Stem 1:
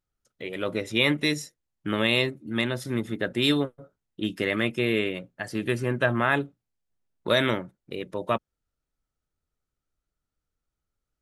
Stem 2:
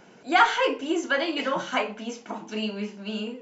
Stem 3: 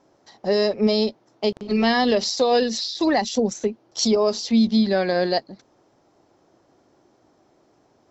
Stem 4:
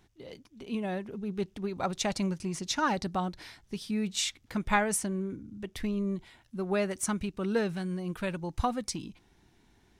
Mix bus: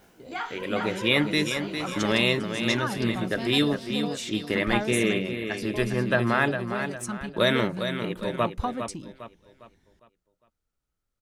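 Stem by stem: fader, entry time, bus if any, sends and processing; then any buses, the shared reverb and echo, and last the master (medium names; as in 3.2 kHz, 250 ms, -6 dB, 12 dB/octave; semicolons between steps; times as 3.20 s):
0.0 dB, 0.10 s, no send, echo send -8 dB, none
-1.0 dB, 0.00 s, no send, echo send -9 dB, word length cut 10-bit, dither triangular; detune thickener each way 46 cents; auto duck -17 dB, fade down 0.80 s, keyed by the fourth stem
-15.5 dB, 1.55 s, no send, echo send -12.5 dB, level held to a coarse grid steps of 19 dB
-4.0 dB, 0.00 s, no send, no echo send, phaser 0.23 Hz, delay 1 ms, feedback 37%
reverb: none
echo: feedback delay 405 ms, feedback 38%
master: none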